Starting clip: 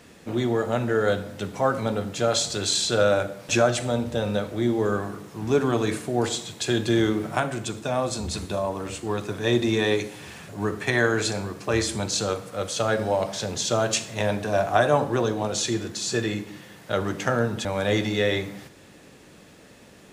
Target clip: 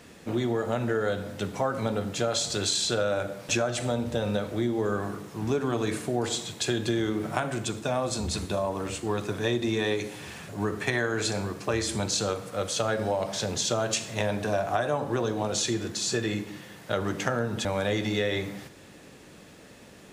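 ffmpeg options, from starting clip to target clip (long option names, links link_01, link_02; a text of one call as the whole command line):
ffmpeg -i in.wav -af "acompressor=threshold=-23dB:ratio=6" out.wav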